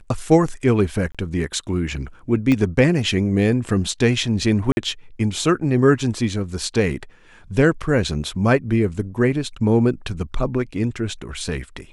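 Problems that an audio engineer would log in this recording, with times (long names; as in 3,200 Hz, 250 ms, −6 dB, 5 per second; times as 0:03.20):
0:01.12–0:01.15: drop-out 26 ms
0:02.52: click −9 dBFS
0:04.72–0:04.77: drop-out 51 ms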